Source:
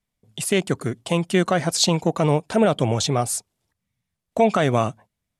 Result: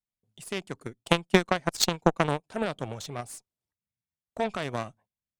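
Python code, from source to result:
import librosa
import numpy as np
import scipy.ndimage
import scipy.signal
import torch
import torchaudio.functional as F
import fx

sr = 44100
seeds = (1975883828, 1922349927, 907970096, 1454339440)

y = fx.transient(x, sr, attack_db=7, sustain_db=-8, at=(0.83, 2.44))
y = fx.cheby_harmonics(y, sr, harmonics=(3, 6, 7, 8), levels_db=(-13, -36, -32, -32), full_scale_db=0.5)
y = y * librosa.db_to_amplitude(-2.0)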